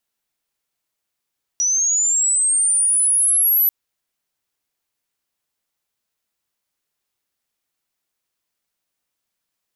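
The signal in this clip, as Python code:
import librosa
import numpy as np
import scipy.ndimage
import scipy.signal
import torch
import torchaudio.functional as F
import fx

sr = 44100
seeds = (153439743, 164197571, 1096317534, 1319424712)

y = fx.chirp(sr, length_s=2.09, from_hz=5800.0, to_hz=12000.0, law='linear', from_db=-15.5, to_db=-12.5)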